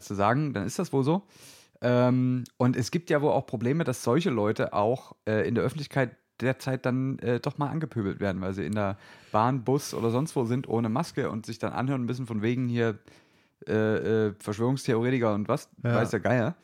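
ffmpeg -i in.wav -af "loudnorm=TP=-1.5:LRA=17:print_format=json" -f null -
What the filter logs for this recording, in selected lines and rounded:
"input_i" : "-27.7",
"input_tp" : "-8.1",
"input_lra" : "2.5",
"input_thresh" : "-37.9",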